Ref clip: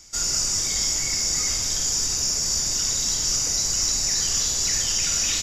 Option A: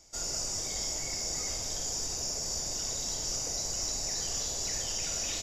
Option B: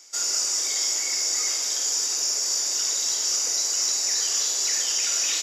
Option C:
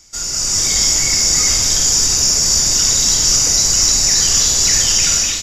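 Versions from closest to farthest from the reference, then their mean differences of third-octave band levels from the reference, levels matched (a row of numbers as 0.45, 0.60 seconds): C, A, B; 1.0, 2.5, 5.0 decibels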